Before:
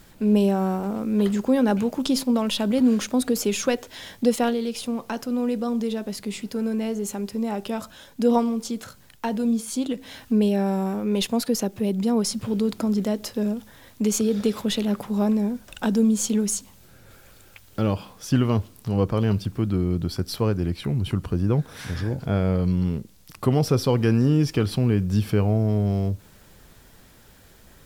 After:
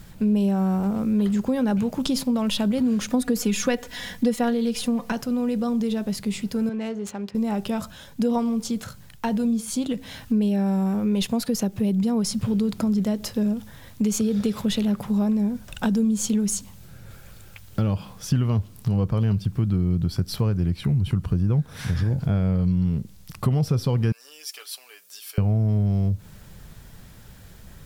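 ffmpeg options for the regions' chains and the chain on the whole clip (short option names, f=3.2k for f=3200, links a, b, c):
-filter_complex "[0:a]asettb=1/sr,asplit=3[a][b][c];[a]atrim=end=3.094[d];[b]atrim=start=3.09:end=5.12,asetpts=PTS-STARTPTS,afade=t=in:d=0.004:c=qsin,afade=t=out:st=2.026:d=0.004:c=qsin,equalizer=f=1.8k:t=o:w=0.36:g=5,aecho=1:1:4.1:0.78,atrim=end_sample=89523[e];[c]atrim=start=5.116[f];[d][e]acrossfade=d=0.004:c1=hsin:c2=qsin[g];[g][f]acrossfade=d=0.004:c1=qsin:c2=hsin,asettb=1/sr,asplit=3[h][i][j];[h]atrim=end=6.694[k];[i]atrim=start=6.69:end=7.35,asetpts=PTS-STARTPTS,afade=t=in:d=0.004:c=qsin,afade=t=out:st=0.656:d=0.004:c=qsin,highpass=f=480:p=1,adynamicsmooth=sensitivity=7.5:basefreq=2k[l];[j]atrim=start=7.346[m];[k][l]acrossfade=d=0.004:c1=hsin:c2=qsin[n];[n][m]acrossfade=d=0.004:c1=qsin:c2=hsin,asettb=1/sr,asplit=3[o][p][q];[o]atrim=end=24.124[r];[p]atrim=start=24.12:end=25.38,asetpts=PTS-STARTPTS,afade=t=in:d=0.004:c=qsin,afade=t=out:st=1.256:d=0.004:c=qsin,highpass=f=480:w=0.5412,highpass=f=480:w=1.3066,aderivative,aecho=1:1:6.9:0.58,atrim=end_sample=55566[s];[q]atrim=start=25.376[t];[r][s]acrossfade=d=0.004:c1=hsin:c2=qsin[u];[u][t]acrossfade=d=0.004:c1=qsin:c2=hsin,lowshelf=f=220:t=q:w=1.5:g=6.5,acompressor=threshold=-22dB:ratio=3,volume=1.5dB"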